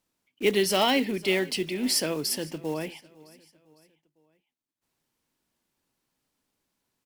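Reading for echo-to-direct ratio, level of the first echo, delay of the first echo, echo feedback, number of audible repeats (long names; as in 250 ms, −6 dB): −21.0 dB, −22.0 dB, 505 ms, 44%, 2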